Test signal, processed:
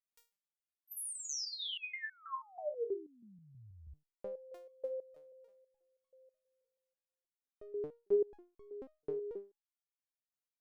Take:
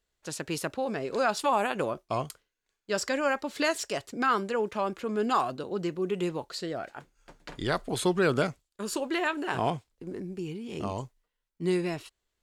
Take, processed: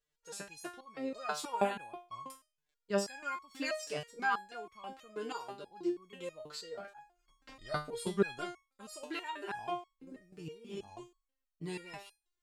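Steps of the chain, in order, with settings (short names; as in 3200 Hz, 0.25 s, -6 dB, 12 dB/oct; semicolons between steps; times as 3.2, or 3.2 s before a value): stepped resonator 6.2 Hz 150–1100 Hz; gain +5.5 dB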